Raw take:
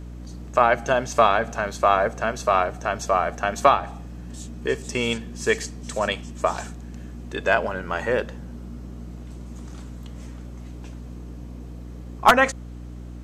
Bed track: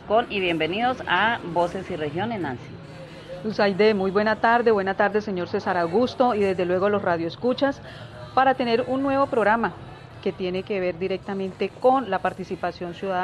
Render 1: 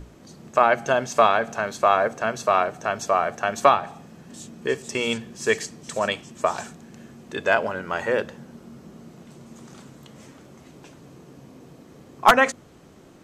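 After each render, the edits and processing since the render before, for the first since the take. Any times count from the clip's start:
mains-hum notches 60/120/180/240/300 Hz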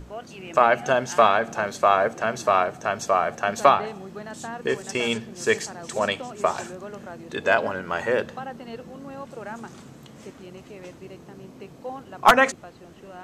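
mix in bed track −17 dB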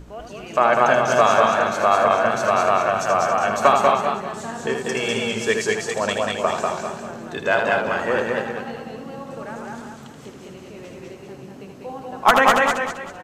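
on a send: loudspeakers that aren't time-aligned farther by 27 metres −6 dB, 73 metres −6 dB
on the sum: feedback echo with a swinging delay time 194 ms, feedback 35%, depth 74 cents, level −3 dB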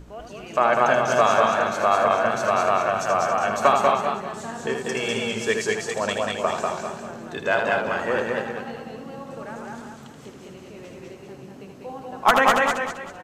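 level −2.5 dB

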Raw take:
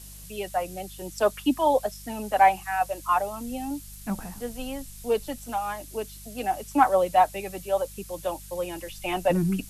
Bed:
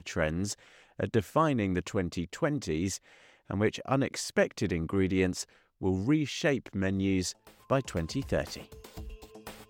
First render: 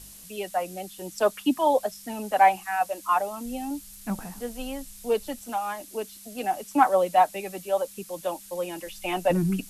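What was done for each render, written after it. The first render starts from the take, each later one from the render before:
hum removal 50 Hz, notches 3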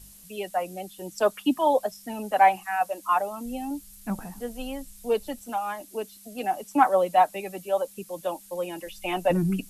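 broadband denoise 6 dB, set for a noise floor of −47 dBFS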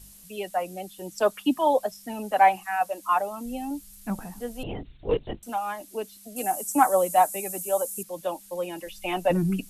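0:04.63–0:05.43: linear-prediction vocoder at 8 kHz whisper
0:06.36–0:08.03: high shelf with overshoot 5,600 Hz +13 dB, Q 1.5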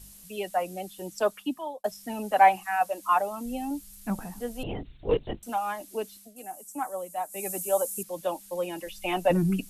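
0:01.02–0:01.84: fade out
0:06.16–0:07.46: duck −13 dB, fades 0.17 s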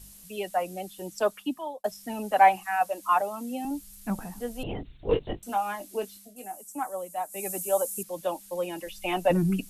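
0:03.21–0:03.65: high-pass filter 170 Hz 24 dB per octave
0:05.10–0:06.57: double-tracking delay 20 ms −8 dB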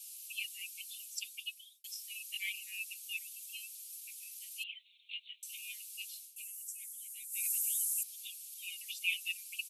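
Butterworth high-pass 2,300 Hz 96 dB per octave
comb filter 4.6 ms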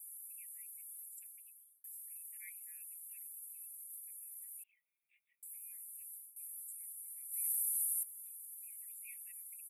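elliptic band-stop filter 1,700–9,700 Hz, stop band 40 dB
parametric band 6,800 Hz +12.5 dB 0.22 octaves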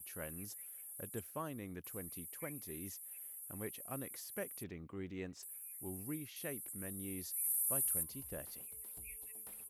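mix in bed −17.5 dB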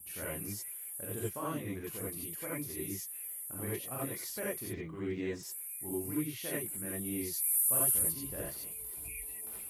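reverb whose tail is shaped and stops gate 110 ms rising, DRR −6.5 dB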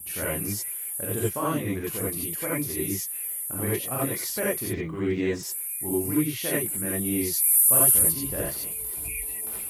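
level +10.5 dB

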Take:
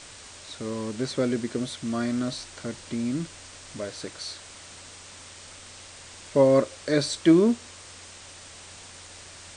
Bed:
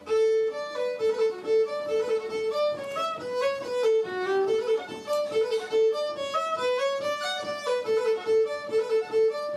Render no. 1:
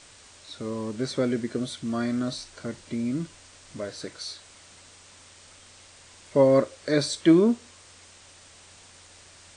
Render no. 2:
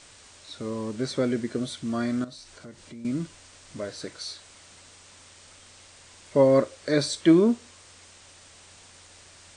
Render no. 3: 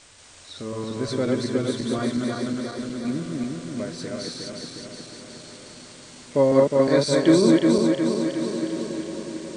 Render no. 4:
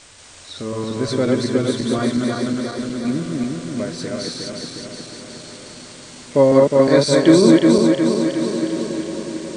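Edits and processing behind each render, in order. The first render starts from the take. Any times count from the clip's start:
noise reduction from a noise print 6 dB
0:02.24–0:03.05: downward compressor 2.5 to 1, threshold −45 dBFS
feedback delay that plays each chunk backwards 181 ms, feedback 77%, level −1.5 dB; feedback delay with all-pass diffusion 1,334 ms, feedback 42%, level −14.5 dB
level +5.5 dB; brickwall limiter −1 dBFS, peak gain reduction 2.5 dB

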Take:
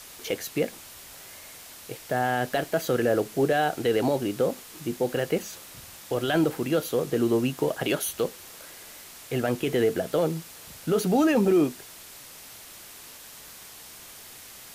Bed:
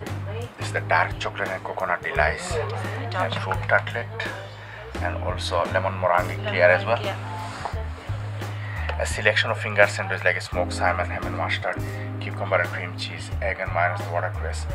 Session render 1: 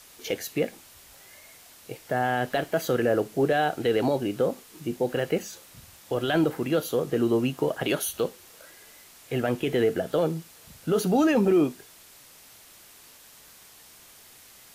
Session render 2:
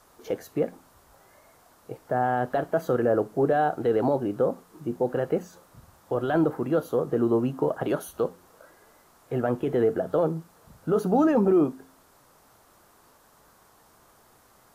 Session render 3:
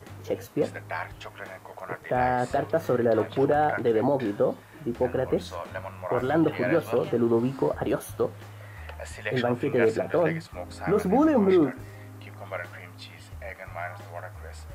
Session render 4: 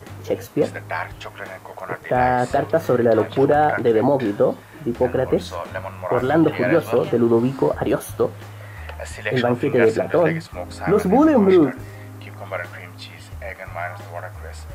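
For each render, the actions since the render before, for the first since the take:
noise reduction from a noise print 6 dB
high shelf with overshoot 1,700 Hz −11.5 dB, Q 1.5; hum removal 88.35 Hz, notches 3
mix in bed −13 dB
level +6.5 dB

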